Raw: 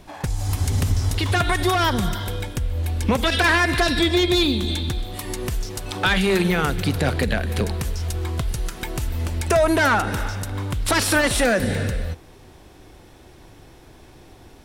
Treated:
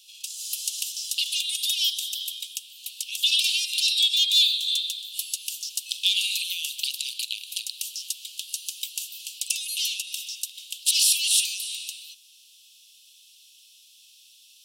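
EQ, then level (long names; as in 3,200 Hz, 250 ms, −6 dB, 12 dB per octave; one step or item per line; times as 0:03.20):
Butterworth high-pass 2,700 Hz 96 dB per octave
+5.0 dB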